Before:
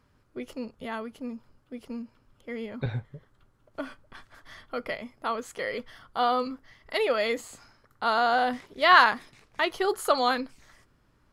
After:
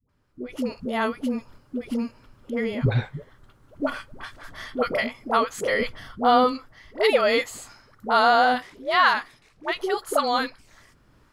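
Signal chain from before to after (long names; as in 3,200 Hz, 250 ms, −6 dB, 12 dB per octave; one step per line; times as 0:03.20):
0:05.80–0:06.43: low-shelf EQ 360 Hz +9 dB
automatic gain control gain up to 16 dB
all-pass dispersion highs, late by 93 ms, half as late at 510 Hz
level −6 dB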